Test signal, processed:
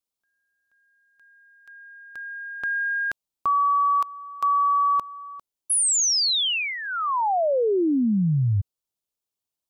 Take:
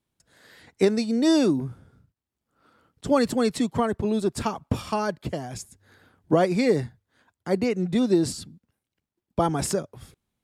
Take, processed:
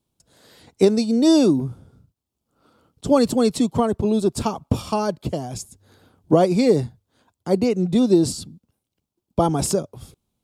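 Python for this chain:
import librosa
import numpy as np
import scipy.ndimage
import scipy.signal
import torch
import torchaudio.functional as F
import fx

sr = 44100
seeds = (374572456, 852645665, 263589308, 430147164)

y = fx.peak_eq(x, sr, hz=1800.0, db=-12.0, octaves=0.83)
y = y * librosa.db_to_amplitude(5.0)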